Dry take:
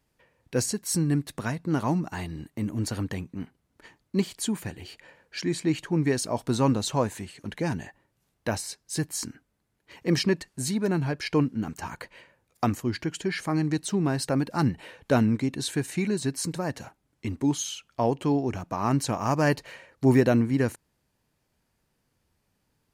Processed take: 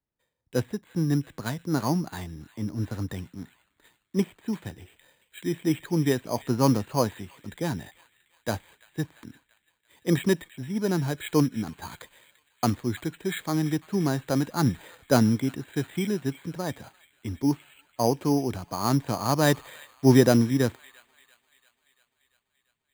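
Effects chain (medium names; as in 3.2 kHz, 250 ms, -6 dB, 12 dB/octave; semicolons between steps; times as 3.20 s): on a send: feedback echo behind a high-pass 342 ms, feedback 75%, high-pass 2.8 kHz, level -7 dB; on the sum: careless resampling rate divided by 8×, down filtered, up hold; three bands expanded up and down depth 40%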